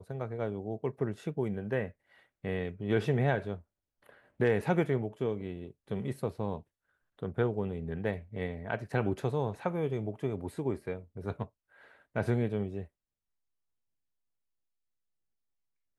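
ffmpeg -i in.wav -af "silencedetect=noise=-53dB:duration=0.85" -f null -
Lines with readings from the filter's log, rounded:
silence_start: 12.87
silence_end: 15.98 | silence_duration: 3.11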